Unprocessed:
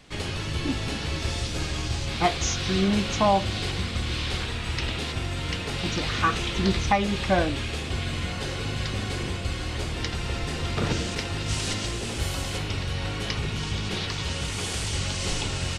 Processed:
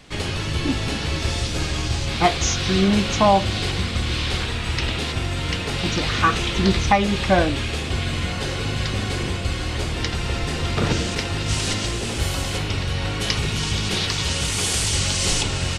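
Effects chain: 13.21–15.43 s: treble shelf 4.5 kHz +8 dB; trim +5 dB

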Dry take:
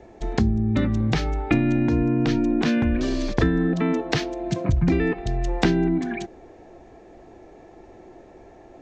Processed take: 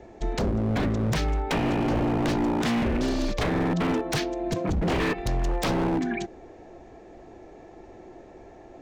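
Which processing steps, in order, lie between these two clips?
4.89–5.37 s: treble shelf 2.9 kHz +7.5 dB; wavefolder -19.5 dBFS

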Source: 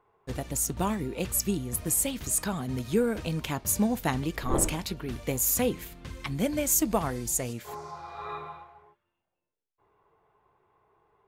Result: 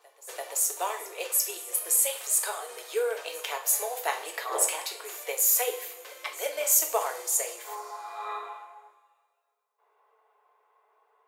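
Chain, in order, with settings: steep high-pass 460 Hz 48 dB/octave; treble shelf 10 kHz +3.5 dB; reverse echo 340 ms -20 dB; reverberation, pre-delay 3 ms, DRR 2.5 dB

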